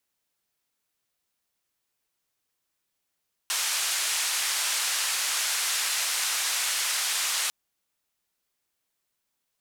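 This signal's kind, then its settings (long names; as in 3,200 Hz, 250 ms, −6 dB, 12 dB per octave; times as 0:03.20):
band-limited noise 1,100–9,500 Hz, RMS −27.5 dBFS 4.00 s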